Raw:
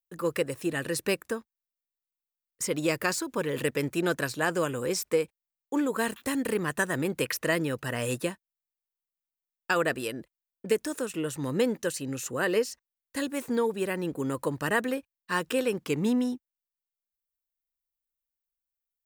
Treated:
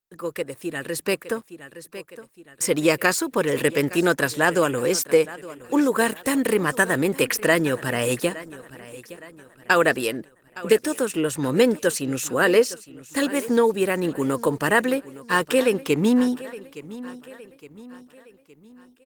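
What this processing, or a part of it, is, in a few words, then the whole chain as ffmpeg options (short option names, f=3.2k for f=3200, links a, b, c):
video call: -af "highpass=f=170:p=1,aecho=1:1:865|1730|2595|3460:0.126|0.0567|0.0255|0.0115,dynaudnorm=f=360:g=7:m=10.5dB" -ar 48000 -c:a libopus -b:a 20k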